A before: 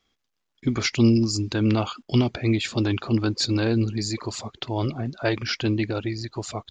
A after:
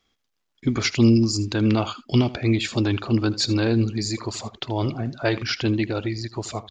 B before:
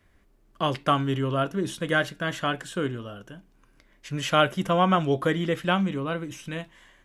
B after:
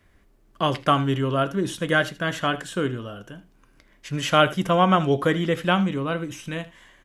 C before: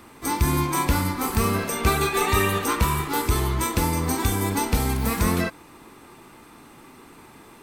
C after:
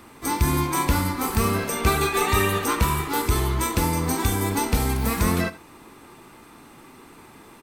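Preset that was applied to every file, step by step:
echo 79 ms -17.5 dB; match loudness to -23 LUFS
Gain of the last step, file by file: +1.5, +3.0, 0.0 dB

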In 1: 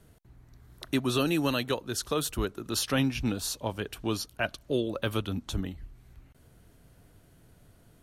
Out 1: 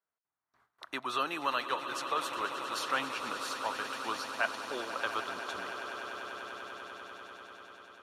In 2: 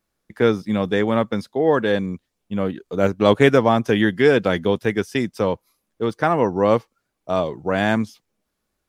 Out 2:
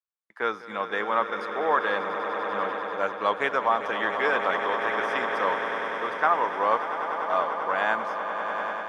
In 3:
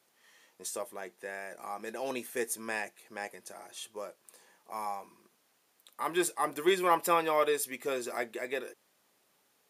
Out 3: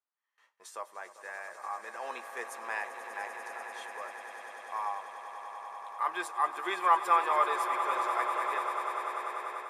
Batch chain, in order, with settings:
tilt +2.5 dB/oct; gate with hold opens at -46 dBFS; swelling echo 98 ms, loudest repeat 8, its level -13.5 dB; AGC gain up to 4.5 dB; band-pass 1100 Hz, Q 1.9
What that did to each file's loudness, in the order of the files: -5.0, -6.5, +1.0 LU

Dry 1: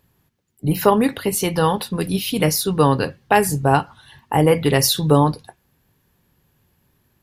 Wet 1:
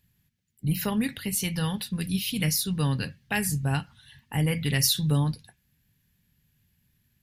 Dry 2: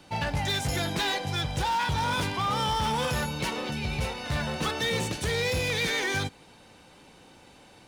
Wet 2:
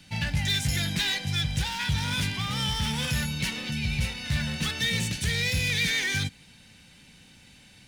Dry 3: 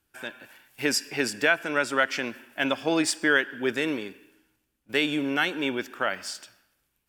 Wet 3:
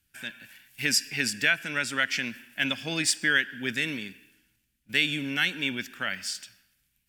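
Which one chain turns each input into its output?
band shelf 630 Hz -14 dB 2.4 oct; match loudness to -27 LUFS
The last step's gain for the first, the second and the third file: -5.0, +3.0, +2.5 dB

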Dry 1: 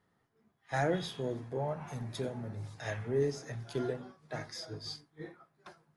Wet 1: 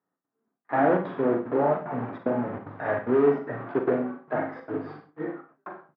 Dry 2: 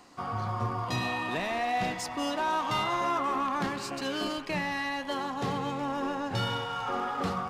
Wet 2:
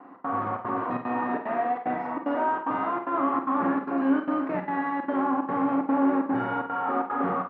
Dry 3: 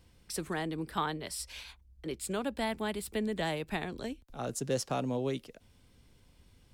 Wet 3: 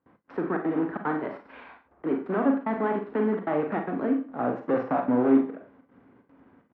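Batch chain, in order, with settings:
block floating point 3-bit; low shelf 410 Hz -5 dB; overloaded stage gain 33 dB; bell 270 Hz +11.5 dB 0.25 oct; early reflections 40 ms -9.5 dB, 67 ms -16.5 dB; step gate "xx.xxxx.xx" 186 bpm -60 dB; LPF 1500 Hz 24 dB/oct; Schroeder reverb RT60 0.36 s, combs from 33 ms, DRR 5 dB; gate with hold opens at -57 dBFS; HPF 200 Hz 12 dB/oct; match loudness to -27 LUFS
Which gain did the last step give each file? +14.5, +8.5, +11.5 dB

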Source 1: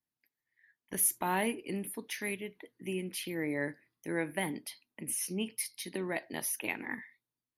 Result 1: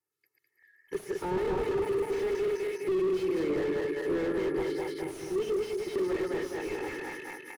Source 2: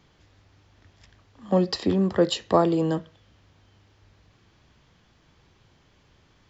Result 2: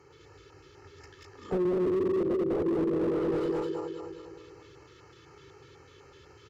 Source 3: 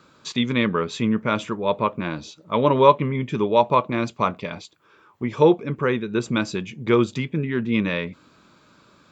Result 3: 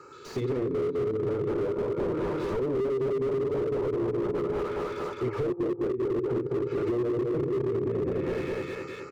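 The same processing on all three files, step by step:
regenerating reverse delay 0.103 s, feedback 75%, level -1 dB; treble ducked by the level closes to 410 Hz, closed at -15.5 dBFS; thirty-one-band EQ 200 Hz -6 dB, 400 Hz +11 dB, 1250 Hz +6 dB; compressor 20:1, threshold -23 dBFS; HPF 95 Hz 12 dB/oct; dynamic EQ 5300 Hz, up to +4 dB, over -57 dBFS, Q 1.8; LFO notch square 4 Hz 760–3500 Hz; comb 2.3 ms, depth 78%; slew limiter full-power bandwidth 21 Hz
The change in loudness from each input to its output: +4.0, -5.5, -7.0 LU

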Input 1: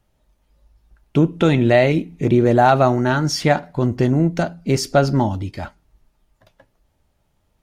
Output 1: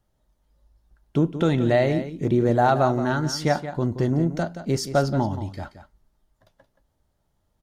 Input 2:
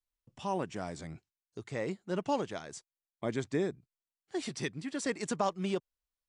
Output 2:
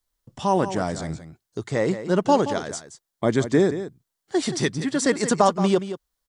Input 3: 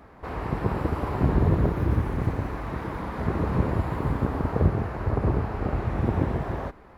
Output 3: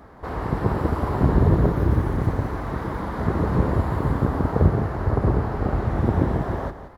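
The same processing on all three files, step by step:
bell 2500 Hz -7.5 dB 0.46 oct; on a send: echo 0.175 s -11.5 dB; on the sum: match loudness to -23 LUFS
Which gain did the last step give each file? -5.5, +13.0, +3.5 dB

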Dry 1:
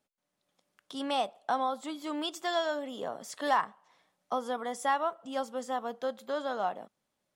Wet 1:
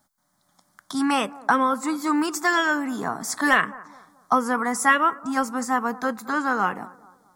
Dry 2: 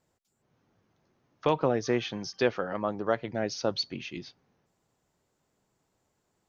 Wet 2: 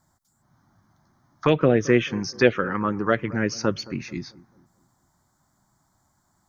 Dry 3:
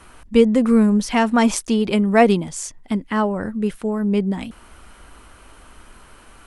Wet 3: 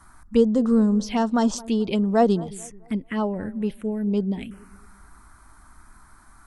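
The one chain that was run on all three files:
envelope phaser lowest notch 460 Hz, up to 2300 Hz, full sweep at -14 dBFS; analogue delay 0.218 s, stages 2048, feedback 38%, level -20 dB; match loudness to -23 LUFS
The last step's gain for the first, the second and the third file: +17.0, +11.0, -4.0 dB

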